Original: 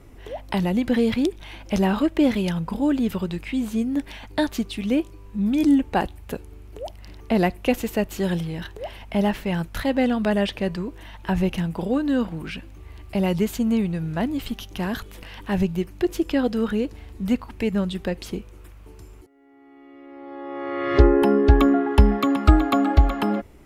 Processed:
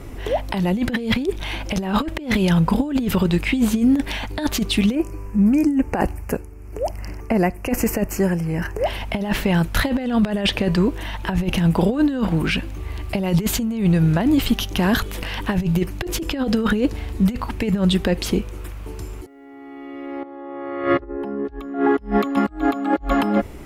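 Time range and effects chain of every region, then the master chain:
4.95–8.86 s: tremolo triangle 1.1 Hz, depth 70% + Butterworth band-stop 3.6 kHz, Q 1.5
20.23–21.45 s: gate -25 dBFS, range -11 dB + peaking EQ 11 kHz -14.5 dB 2.8 oct + hum notches 60/120/180/240/300/360/420/480/540/600 Hz
whole clip: compressor with a negative ratio -25 dBFS, ratio -0.5; loudness maximiser +15 dB; trim -7.5 dB

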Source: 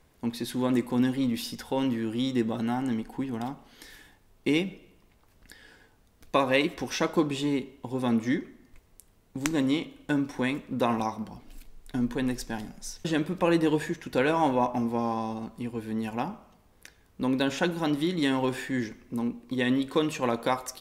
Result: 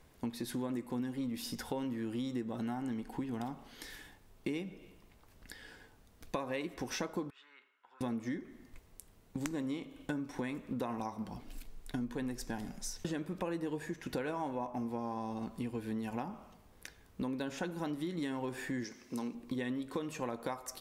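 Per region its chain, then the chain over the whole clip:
7.30–8.01 s: compression 4:1, threshold -30 dBFS + ladder band-pass 1.5 kHz, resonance 75%
18.84–19.35 s: high-pass 340 Hz 6 dB/octave + peaking EQ 5.5 kHz +11.5 dB 0.93 oct
whole clip: dynamic bell 3.3 kHz, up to -5 dB, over -47 dBFS, Q 1.2; compression 6:1, threshold -35 dBFS

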